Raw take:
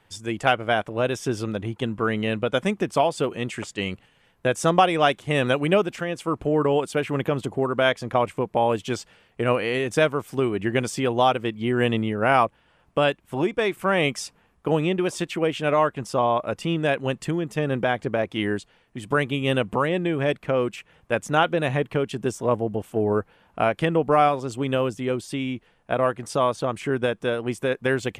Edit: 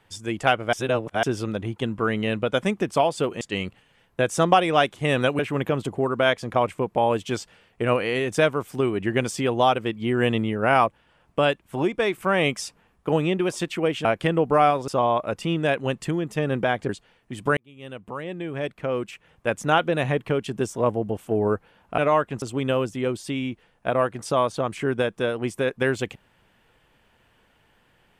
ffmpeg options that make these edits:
-filter_complex "[0:a]asplit=11[s0][s1][s2][s3][s4][s5][s6][s7][s8][s9][s10];[s0]atrim=end=0.732[s11];[s1]atrim=start=0.728:end=1.232,asetpts=PTS-STARTPTS,areverse[s12];[s2]atrim=start=1.228:end=3.412[s13];[s3]atrim=start=3.668:end=5.652[s14];[s4]atrim=start=6.978:end=15.642[s15];[s5]atrim=start=23.628:end=24.462[s16];[s6]atrim=start=16.078:end=18.092[s17];[s7]atrim=start=18.538:end=19.22,asetpts=PTS-STARTPTS,afade=t=out:st=0.678:d=0.004:c=hsin[s18];[s8]atrim=start=19.22:end=23.632,asetpts=PTS-STARTPTS,afade=t=in:d=2.05[s19];[s9]atrim=start=15.638:end=16.082[s20];[s10]atrim=start=24.458[s21];[s11][s12]acrossfade=d=0.004:c1=hsin:c2=hsin[s22];[s22][s13]acrossfade=d=0.004:c1=hsin:c2=hsin[s23];[s23][s14]acrossfade=d=0.004:c1=hsin:c2=hsin[s24];[s24][s15]acrossfade=d=0.004:c1=hsin:c2=hsin[s25];[s25][s16]acrossfade=d=0.004:c1=hsin:c2=hsin[s26];[s26][s17]acrossfade=d=0.004:c1=hsin:c2=hsin[s27];[s18][s19]concat=n=2:v=0:a=1[s28];[s27][s28]acrossfade=d=0.004:c1=hsin:c2=hsin[s29];[s29][s20]acrossfade=d=0.004:c1=hsin:c2=hsin[s30];[s30][s21]acrossfade=d=0.004:c1=hsin:c2=hsin"

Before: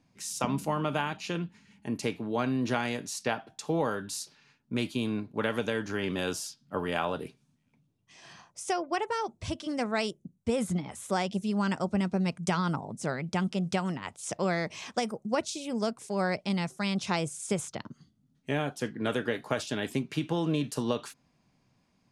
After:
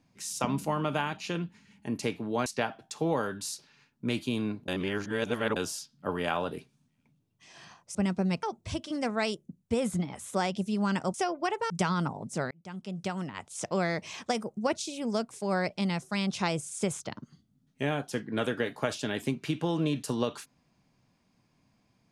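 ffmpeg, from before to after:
-filter_complex "[0:a]asplit=9[s0][s1][s2][s3][s4][s5][s6][s7][s8];[s0]atrim=end=2.462[s9];[s1]atrim=start=3.138:end=5.362[s10];[s2]atrim=start=5.358:end=6.242,asetpts=PTS-STARTPTS,areverse[s11];[s3]atrim=start=6.238:end=8.632[s12];[s4]atrim=start=11.898:end=12.382[s13];[s5]atrim=start=9.188:end=11.902[s14];[s6]atrim=start=8.628:end=9.192[s15];[s7]atrim=start=12.378:end=13.19,asetpts=PTS-STARTPTS,afade=t=out:st=0.808:d=0.004:c=hsin[s16];[s8]atrim=start=13.19,asetpts=PTS-STARTPTS,afade=t=in:d=1.4:c=qsin[s17];[s9][s10]acrossfade=d=0.004:c1=hsin:c2=hsin[s18];[s18][s11]acrossfade=d=0.004:c1=hsin:c2=hsin[s19];[s19][s12]acrossfade=d=0.004:c1=hsin:c2=hsin[s20];[s20][s13]acrossfade=d=0.004:c1=hsin:c2=hsin[s21];[s21][s14]acrossfade=d=0.004:c1=hsin:c2=hsin[s22];[s22][s15]acrossfade=d=0.004:c1=hsin:c2=hsin[s23];[s16][s17]concat=n=2:v=0:a=1[s24];[s23][s24]acrossfade=d=0.004:c1=hsin:c2=hsin"

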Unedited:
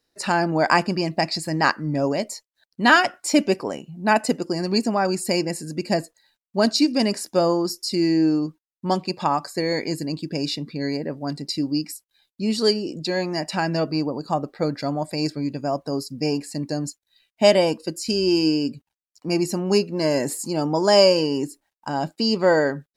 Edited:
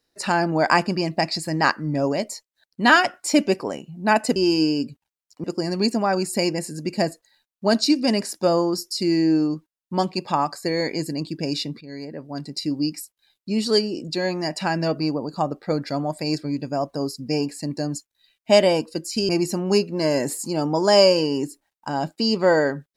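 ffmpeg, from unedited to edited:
-filter_complex "[0:a]asplit=5[s0][s1][s2][s3][s4];[s0]atrim=end=4.362[s5];[s1]atrim=start=18.208:end=19.292[s6];[s2]atrim=start=4.358:end=10.73,asetpts=PTS-STARTPTS,afade=t=out:st=6.368:d=0.004:c=hsin:silence=0.211349[s7];[s3]atrim=start=10.73:end=18.212,asetpts=PTS-STARTPTS,afade=t=in:d=0.96:silence=0.211349[s8];[s4]atrim=start=19.288[s9];[s5][s6]acrossfade=d=0.004:c1=hsin:c2=hsin[s10];[s7][s8]concat=n=2:v=0:a=1[s11];[s10][s11]acrossfade=d=0.004:c1=hsin:c2=hsin[s12];[s12][s9]acrossfade=d=0.004:c1=hsin:c2=hsin"

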